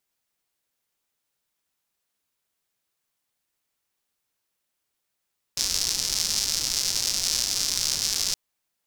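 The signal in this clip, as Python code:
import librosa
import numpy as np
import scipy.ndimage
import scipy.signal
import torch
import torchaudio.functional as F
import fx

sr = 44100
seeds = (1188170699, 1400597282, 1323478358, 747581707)

y = fx.rain(sr, seeds[0], length_s=2.77, drops_per_s=230.0, hz=5300.0, bed_db=-15)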